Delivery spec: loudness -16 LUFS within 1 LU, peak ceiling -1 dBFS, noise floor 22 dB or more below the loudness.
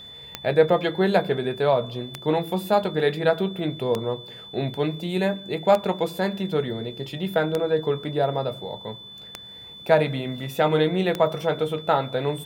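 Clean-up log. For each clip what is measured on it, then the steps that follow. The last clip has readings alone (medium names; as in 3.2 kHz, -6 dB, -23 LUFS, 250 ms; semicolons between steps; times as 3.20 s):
clicks found 7; steady tone 3.5 kHz; tone level -40 dBFS; loudness -24.0 LUFS; peak level -5.0 dBFS; loudness target -16.0 LUFS
-> de-click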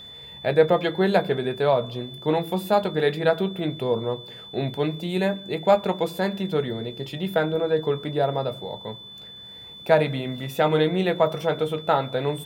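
clicks found 0; steady tone 3.5 kHz; tone level -40 dBFS
-> band-stop 3.5 kHz, Q 30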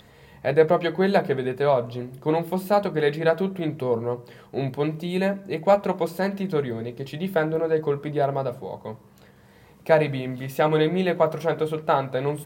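steady tone not found; loudness -24.0 LUFS; peak level -5.0 dBFS; loudness target -16.0 LUFS
-> trim +8 dB; peak limiter -1 dBFS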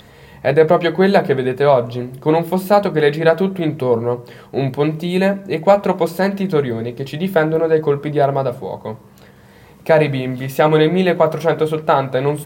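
loudness -16.5 LUFS; peak level -1.0 dBFS; noise floor -44 dBFS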